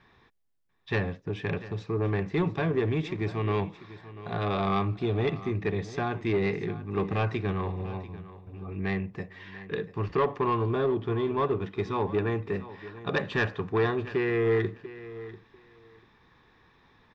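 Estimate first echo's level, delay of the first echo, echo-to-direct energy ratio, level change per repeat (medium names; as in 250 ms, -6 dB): -16.0 dB, 691 ms, -16.0 dB, -15.5 dB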